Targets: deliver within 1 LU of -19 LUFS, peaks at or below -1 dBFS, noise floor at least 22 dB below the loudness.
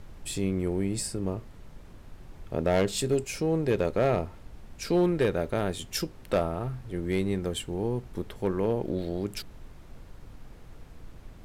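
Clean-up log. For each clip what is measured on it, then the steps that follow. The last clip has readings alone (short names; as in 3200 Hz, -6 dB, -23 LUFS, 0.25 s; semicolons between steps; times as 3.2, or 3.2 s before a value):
clipped 0.4%; flat tops at -17.5 dBFS; noise floor -49 dBFS; noise floor target -52 dBFS; loudness -29.5 LUFS; peak -17.5 dBFS; loudness target -19.0 LUFS
-> clip repair -17.5 dBFS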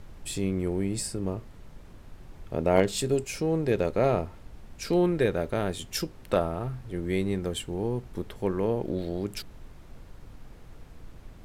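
clipped 0.0%; noise floor -49 dBFS; noise floor target -51 dBFS
-> noise print and reduce 6 dB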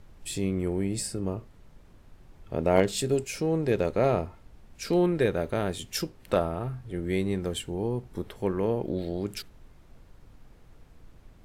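noise floor -55 dBFS; loudness -29.0 LUFS; peak -8.5 dBFS; loudness target -19.0 LUFS
-> gain +10 dB; limiter -1 dBFS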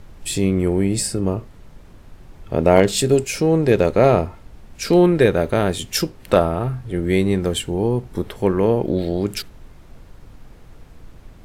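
loudness -19.0 LUFS; peak -1.0 dBFS; noise floor -45 dBFS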